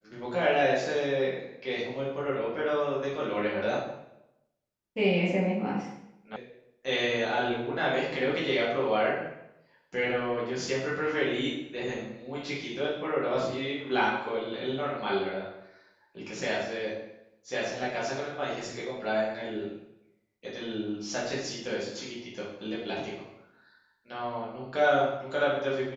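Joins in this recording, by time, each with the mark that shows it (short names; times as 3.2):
6.36 sound cut off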